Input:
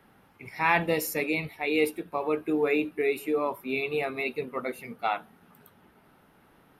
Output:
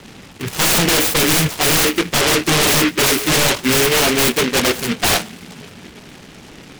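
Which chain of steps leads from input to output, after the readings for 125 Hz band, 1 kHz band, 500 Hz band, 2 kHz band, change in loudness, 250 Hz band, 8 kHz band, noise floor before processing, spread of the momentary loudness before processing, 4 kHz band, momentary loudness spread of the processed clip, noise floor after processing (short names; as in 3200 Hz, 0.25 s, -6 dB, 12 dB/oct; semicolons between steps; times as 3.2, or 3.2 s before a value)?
+19.0 dB, +9.5 dB, +8.5 dB, +12.5 dB, +14.0 dB, +12.0 dB, +27.5 dB, -61 dBFS, 9 LU, +25.5 dB, 5 LU, -40 dBFS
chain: low-pass opened by the level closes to 950 Hz, open at -24 dBFS; sine folder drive 18 dB, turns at -11 dBFS; noise-modulated delay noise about 2100 Hz, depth 0.26 ms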